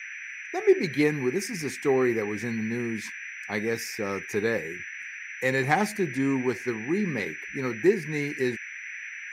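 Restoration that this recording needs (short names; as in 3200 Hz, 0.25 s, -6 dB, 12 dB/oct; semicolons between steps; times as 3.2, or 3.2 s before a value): notch 5900 Hz, Q 30; noise print and reduce 30 dB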